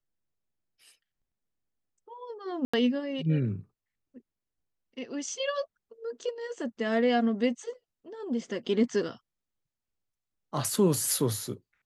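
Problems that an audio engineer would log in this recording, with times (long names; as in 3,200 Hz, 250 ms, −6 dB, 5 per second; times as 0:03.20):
0:02.65–0:02.73: drop-out 85 ms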